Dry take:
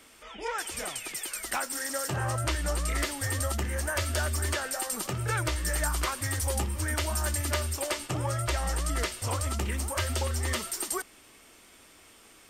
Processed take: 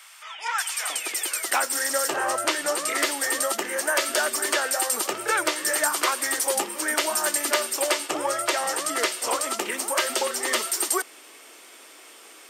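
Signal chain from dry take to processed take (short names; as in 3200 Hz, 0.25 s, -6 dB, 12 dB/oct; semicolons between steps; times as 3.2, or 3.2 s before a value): HPF 880 Hz 24 dB/oct, from 0.9 s 320 Hz; gain +8 dB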